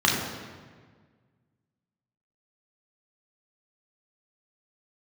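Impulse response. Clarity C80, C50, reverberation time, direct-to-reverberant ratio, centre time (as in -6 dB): 4.5 dB, 2.5 dB, 1.6 s, -3.0 dB, 65 ms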